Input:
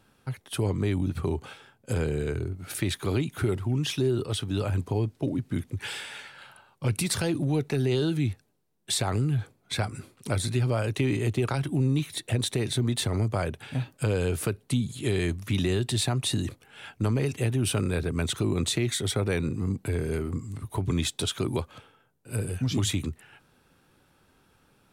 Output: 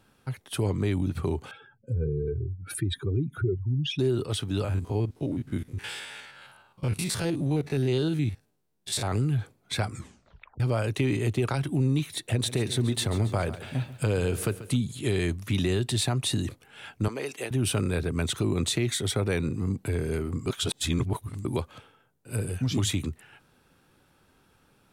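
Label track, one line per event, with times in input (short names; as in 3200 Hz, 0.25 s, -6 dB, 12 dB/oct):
1.510000	3.990000	spectral contrast raised exponent 2.3
4.640000	9.120000	stepped spectrum every 50 ms
9.910000	9.910000	tape stop 0.69 s
12.280000	14.760000	lo-fi delay 0.138 s, feedback 55%, word length 9-bit, level -14.5 dB
17.080000	17.510000	HPF 430 Hz
20.460000	21.450000	reverse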